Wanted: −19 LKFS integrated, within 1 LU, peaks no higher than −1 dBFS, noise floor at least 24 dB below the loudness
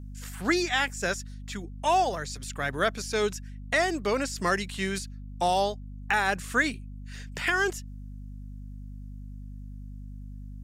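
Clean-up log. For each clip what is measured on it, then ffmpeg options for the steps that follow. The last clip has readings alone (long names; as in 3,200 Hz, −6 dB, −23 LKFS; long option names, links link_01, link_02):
mains hum 50 Hz; hum harmonics up to 250 Hz; level of the hum −38 dBFS; integrated loudness −28.0 LKFS; sample peak −12.0 dBFS; target loudness −19.0 LKFS
→ -af "bandreject=frequency=50:width_type=h:width=4,bandreject=frequency=100:width_type=h:width=4,bandreject=frequency=150:width_type=h:width=4,bandreject=frequency=200:width_type=h:width=4,bandreject=frequency=250:width_type=h:width=4"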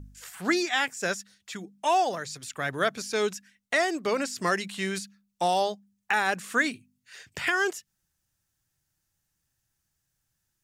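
mains hum none found; integrated loudness −28.0 LKFS; sample peak −12.5 dBFS; target loudness −19.0 LKFS
→ -af "volume=9dB"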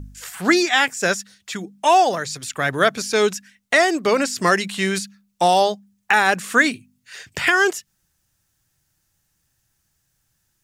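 integrated loudness −19.0 LKFS; sample peak −3.5 dBFS; background noise floor −70 dBFS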